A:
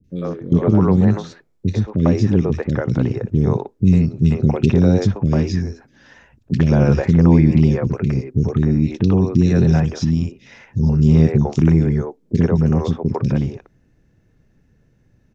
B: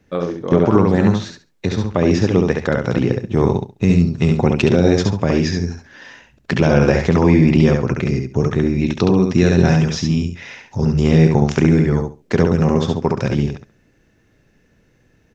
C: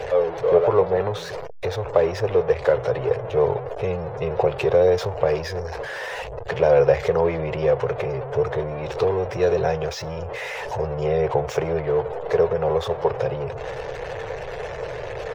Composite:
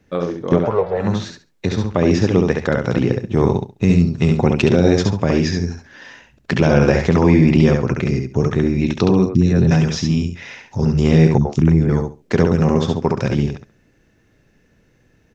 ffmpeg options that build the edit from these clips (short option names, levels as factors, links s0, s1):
-filter_complex "[0:a]asplit=2[s0][s1];[1:a]asplit=4[s2][s3][s4][s5];[s2]atrim=end=0.77[s6];[2:a]atrim=start=0.53:end=1.2[s7];[s3]atrim=start=0.96:end=9.262[s8];[s0]atrim=start=9.258:end=9.712[s9];[s4]atrim=start=9.708:end=11.382[s10];[s1]atrim=start=11.378:end=11.892[s11];[s5]atrim=start=11.888[s12];[s6][s7]acrossfade=d=0.24:c1=tri:c2=tri[s13];[s13][s8]acrossfade=d=0.24:c1=tri:c2=tri[s14];[s14][s9]acrossfade=d=0.004:c1=hsin:c2=hsin[s15];[s15][s10]acrossfade=d=0.004:c1=hsin:c2=hsin[s16];[s16][s11]acrossfade=d=0.004:c1=hsin:c2=hsin[s17];[s17][s12]acrossfade=d=0.004:c1=hsin:c2=hsin"